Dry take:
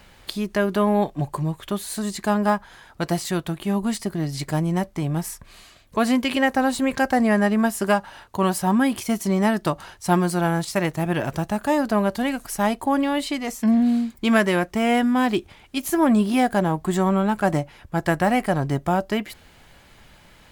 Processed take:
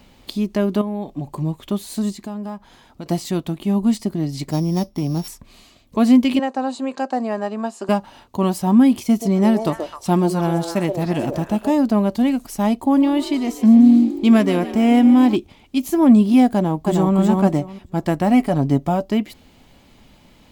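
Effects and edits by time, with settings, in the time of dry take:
0:00.81–0:01.38: downward compressor 5 to 1, threshold −25 dBFS
0:02.12–0:03.06: downward compressor 2 to 1, threshold −38 dBFS
0:04.51–0:05.28: samples sorted by size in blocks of 8 samples
0:06.39–0:07.89: loudspeaker in its box 490–7,400 Hz, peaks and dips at 2,100 Hz −10 dB, 3,300 Hz −7 dB, 5,600 Hz −9 dB
0:09.06–0:11.71: echo through a band-pass that steps 129 ms, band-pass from 520 Hz, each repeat 1.4 octaves, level −1 dB
0:12.82–0:15.36: echo with shifted repeats 147 ms, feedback 63%, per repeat +47 Hz, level −14 dB
0:16.55–0:17.16: delay throw 310 ms, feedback 15%, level −2 dB
0:18.31–0:19.03: comb filter 7.1 ms, depth 43%
whole clip: graphic EQ with 15 bands 250 Hz +9 dB, 1,600 Hz −9 dB, 10,000 Hz −5 dB

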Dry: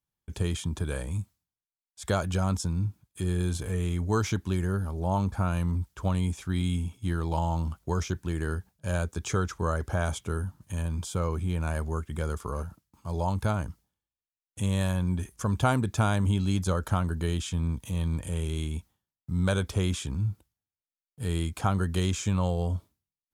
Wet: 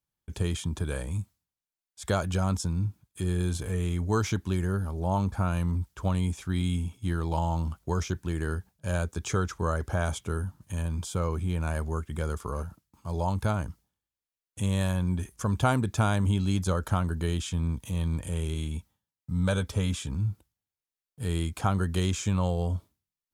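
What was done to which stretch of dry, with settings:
0:18.54–0:20.13: notch comb filter 360 Hz

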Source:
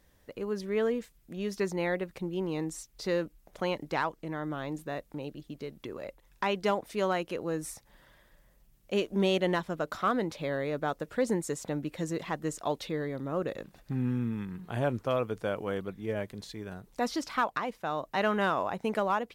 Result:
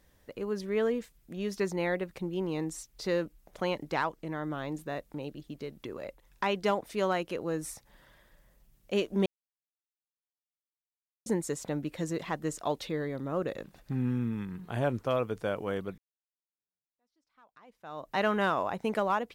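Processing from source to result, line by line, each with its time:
0:09.26–0:11.26: silence
0:15.98–0:18.13: fade in exponential

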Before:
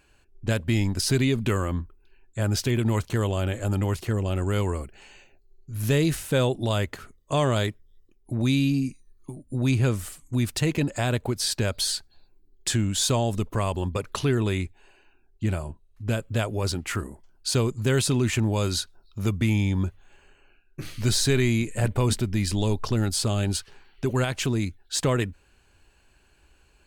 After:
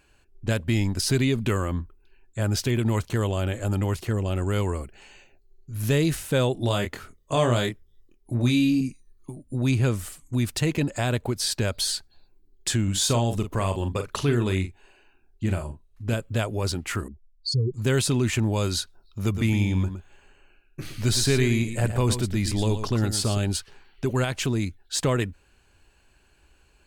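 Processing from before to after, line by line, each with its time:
0:06.54–0:08.81: double-tracking delay 25 ms −5 dB
0:12.83–0:16.14: double-tracking delay 42 ms −8.5 dB
0:17.08–0:17.74: expanding power law on the bin magnitudes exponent 3.2
0:19.23–0:23.38: single-tap delay 115 ms −9.5 dB

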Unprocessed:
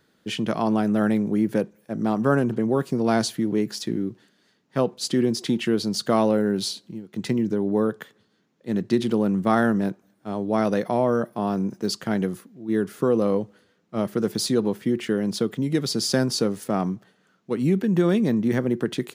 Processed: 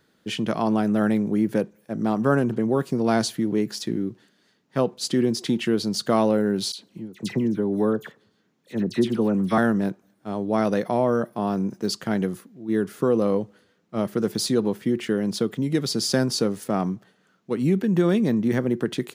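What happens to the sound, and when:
0:06.72–0:09.58: all-pass dispersion lows, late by 66 ms, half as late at 2,100 Hz

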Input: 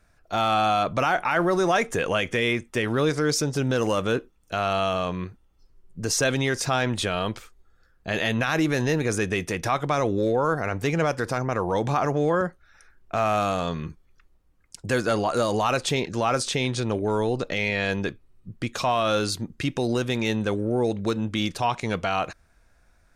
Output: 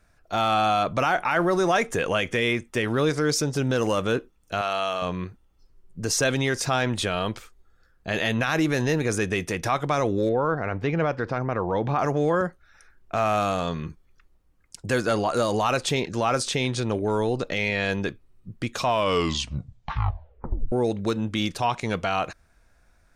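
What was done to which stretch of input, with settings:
0:04.61–0:05.02: high-pass filter 600 Hz 6 dB per octave
0:10.29–0:11.99: high-frequency loss of the air 240 metres
0:18.86: tape stop 1.86 s

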